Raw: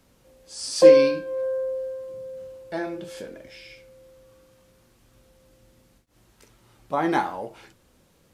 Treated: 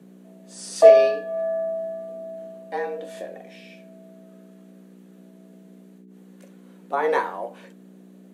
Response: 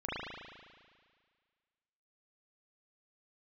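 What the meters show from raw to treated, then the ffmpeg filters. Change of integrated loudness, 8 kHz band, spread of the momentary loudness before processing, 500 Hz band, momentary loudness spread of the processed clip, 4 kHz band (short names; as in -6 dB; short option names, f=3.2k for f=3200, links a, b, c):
+1.0 dB, -3.0 dB, 25 LU, +1.0 dB, 24 LU, -6.0 dB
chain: -af "equalizer=f=400:t=o:w=0.33:g=12,equalizer=f=630:t=o:w=0.33:g=3,equalizer=f=1.6k:t=o:w=0.33:g=4,equalizer=f=5k:t=o:w=0.33:g=-8,aeval=exprs='val(0)+0.00562*(sin(2*PI*60*n/s)+sin(2*PI*2*60*n/s)/2+sin(2*PI*3*60*n/s)/3+sin(2*PI*4*60*n/s)/4+sin(2*PI*5*60*n/s)/5)':c=same,afreqshift=130,volume=-2dB"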